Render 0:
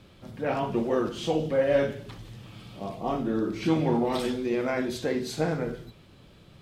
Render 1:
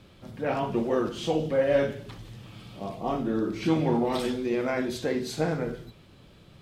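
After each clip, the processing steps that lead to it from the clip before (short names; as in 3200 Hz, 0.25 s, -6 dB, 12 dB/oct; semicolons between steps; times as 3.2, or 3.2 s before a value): nothing audible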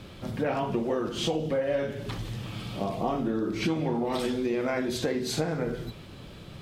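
compressor 6:1, threshold -34 dBFS, peak gain reduction 15 dB; gain +8.5 dB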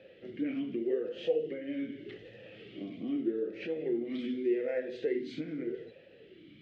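air absorption 110 m; vowel sweep e-i 0.83 Hz; gain +4 dB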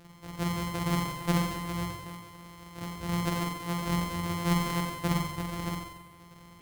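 sample sorter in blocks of 256 samples; flutter echo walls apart 7.8 m, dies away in 0.93 s; gain +1 dB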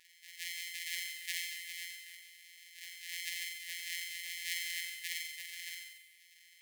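brick-wall FIR high-pass 1700 Hz; flange 1.1 Hz, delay 2.2 ms, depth 9.8 ms, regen -74%; gain +4 dB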